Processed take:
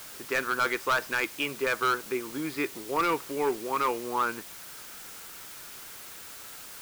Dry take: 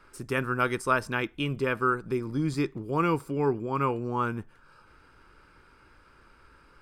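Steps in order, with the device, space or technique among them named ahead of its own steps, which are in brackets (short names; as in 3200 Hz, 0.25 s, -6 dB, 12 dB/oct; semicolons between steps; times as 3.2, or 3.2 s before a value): drive-through speaker (BPF 400–3900 Hz; bell 2100 Hz +5.5 dB 0.77 oct; hard clip -22 dBFS, distortion -10 dB; white noise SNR 13 dB); gain +2 dB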